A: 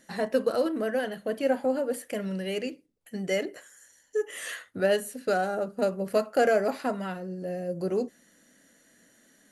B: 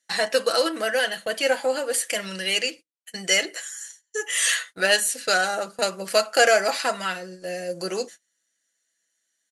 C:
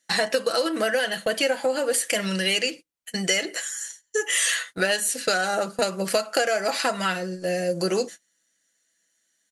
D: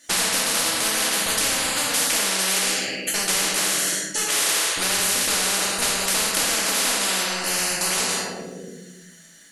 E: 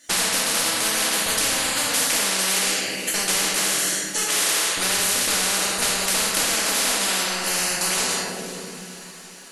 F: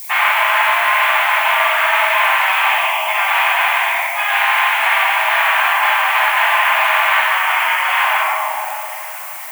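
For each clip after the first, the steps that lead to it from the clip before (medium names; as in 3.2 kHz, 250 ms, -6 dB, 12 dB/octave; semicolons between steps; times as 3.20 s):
frequency weighting ITU-R 468; gate -46 dBFS, range -29 dB; comb 6 ms, depth 40%; trim +7 dB
bass shelf 260 Hz +9 dB; compression 10:1, threshold -23 dBFS, peak gain reduction 13 dB; trim +4 dB
simulated room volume 300 m³, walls mixed, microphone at 2.5 m; spectrum-flattening compressor 10:1; trim -4 dB
echo that smears into a reverb 458 ms, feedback 61%, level -14.5 dB
mistuned SSB +380 Hz 290–2400 Hz; simulated room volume 860 m³, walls furnished, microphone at 9.4 m; added noise violet -34 dBFS; trim +3 dB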